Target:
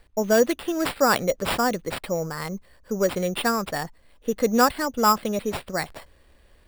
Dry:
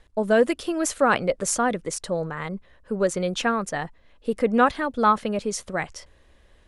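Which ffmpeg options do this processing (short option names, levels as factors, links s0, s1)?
-af "acrusher=samples=7:mix=1:aa=0.000001"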